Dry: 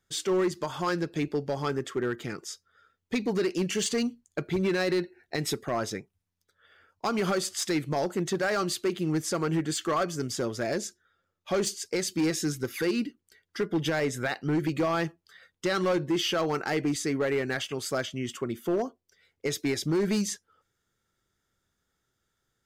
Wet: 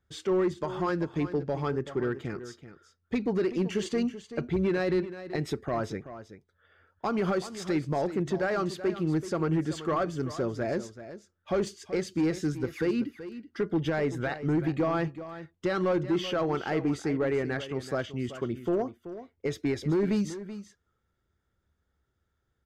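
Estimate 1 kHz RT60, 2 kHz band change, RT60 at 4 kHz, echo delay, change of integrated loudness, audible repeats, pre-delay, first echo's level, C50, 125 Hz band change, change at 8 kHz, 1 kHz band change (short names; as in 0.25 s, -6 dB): none, -3.5 dB, none, 0.381 s, -0.5 dB, 1, none, -13.0 dB, none, +1.5 dB, -13.0 dB, -1.5 dB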